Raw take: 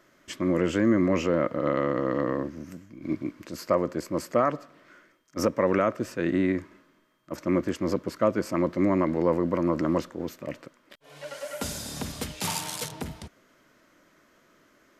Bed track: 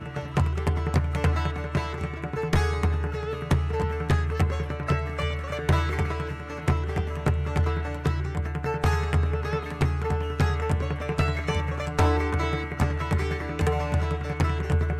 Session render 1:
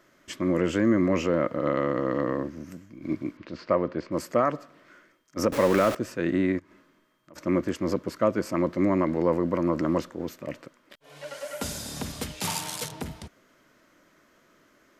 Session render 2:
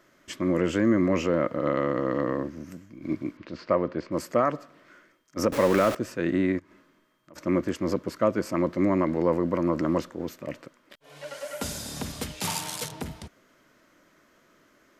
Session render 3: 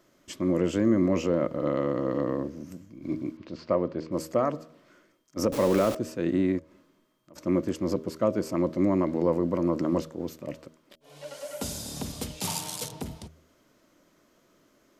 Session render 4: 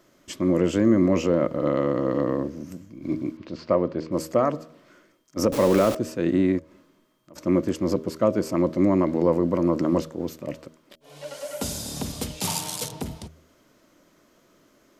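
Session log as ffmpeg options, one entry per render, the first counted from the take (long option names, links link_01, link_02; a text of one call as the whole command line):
ffmpeg -i in.wav -filter_complex "[0:a]asettb=1/sr,asplit=3[link_01][link_02][link_03];[link_01]atrim=end=3.374[link_04];[link_02]atrim=start=3.37:end=4.12,asetpts=PTS-STARTPTS,afade=type=in:duration=0.004:curve=qsin,afade=type=out:start_time=0.746:duration=0.004:curve=qsin,lowpass=frequency=4200:width=0.5412,lowpass=frequency=4200:width=1.3066[link_05];[link_03]atrim=start=4.116[link_06];[link_04][link_05]acrossfade=duration=0.004:curve1=hsin:curve2=qsin[link_07];[link_07][link_06]acrossfade=duration=0.004:curve1=qsin:curve2=hsin,asettb=1/sr,asplit=3[link_08][link_09][link_10];[link_08]atrim=end=5.524[link_11];[link_09]atrim=start=5.52:end=5.95,asetpts=PTS-STARTPTS,afade=type=in:duration=0.004:curve=qsin,afade=type=out:start_time=0.426:duration=0.004:curve=qsin,aeval=exprs='val(0)+0.5*0.0501*sgn(val(0))':channel_layout=same[link_12];[link_10]atrim=start=5.946[link_13];[link_11][link_12]acrossfade=duration=0.004:curve1=hsin:curve2=qsin[link_14];[link_14][link_13]acrossfade=duration=0.004:curve1=qsin:curve2=hsin,asplit=3[link_15][link_16][link_17];[link_15]afade=type=out:start_time=6.58:duration=0.02[link_18];[link_16]acompressor=threshold=-50dB:ratio=4:attack=3.2:release=140:knee=1:detection=peak,afade=type=in:start_time=6.58:duration=0.02,afade=type=out:start_time=7.35:duration=0.02[link_19];[link_17]afade=type=in:start_time=7.35:duration=0.02[link_20];[link_18][link_19][link_20]amix=inputs=3:normalize=0" out.wav
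ffmpeg -i in.wav -af anull out.wav
ffmpeg -i in.wav -af "equalizer=frequency=1700:width_type=o:width=1.3:gain=-8.5,bandreject=frequency=79.29:width_type=h:width=4,bandreject=frequency=158.58:width_type=h:width=4,bandreject=frequency=237.87:width_type=h:width=4,bandreject=frequency=317.16:width_type=h:width=4,bandreject=frequency=396.45:width_type=h:width=4,bandreject=frequency=475.74:width_type=h:width=4,bandreject=frequency=555.03:width_type=h:width=4,bandreject=frequency=634.32:width_type=h:width=4" out.wav
ffmpeg -i in.wav -af "volume=4dB" out.wav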